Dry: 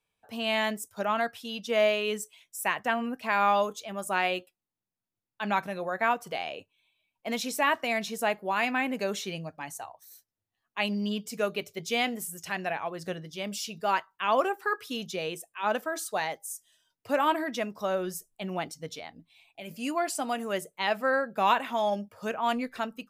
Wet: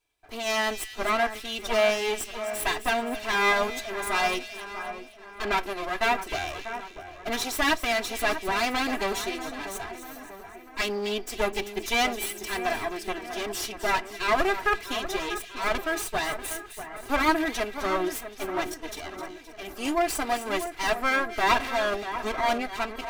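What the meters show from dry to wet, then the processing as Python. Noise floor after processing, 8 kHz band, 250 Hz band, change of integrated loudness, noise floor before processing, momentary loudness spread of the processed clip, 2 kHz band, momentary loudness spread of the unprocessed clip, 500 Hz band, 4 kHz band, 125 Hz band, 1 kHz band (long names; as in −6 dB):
−46 dBFS, +4.5 dB, +1.0 dB, +2.5 dB, below −85 dBFS, 13 LU, +4.5 dB, 12 LU, +1.5 dB, +4.0 dB, −2.0 dB, +1.5 dB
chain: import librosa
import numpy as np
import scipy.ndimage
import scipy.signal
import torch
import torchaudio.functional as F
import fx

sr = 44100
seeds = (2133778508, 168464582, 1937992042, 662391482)

y = fx.lower_of_two(x, sr, delay_ms=3.0)
y = y + 0.34 * np.pad(y, (int(2.5 * sr / 1000.0), 0))[:len(y)]
y = fx.echo_split(y, sr, split_hz=2100.0, low_ms=642, high_ms=260, feedback_pct=52, wet_db=-10.5)
y = y * 10.0 ** (4.5 / 20.0)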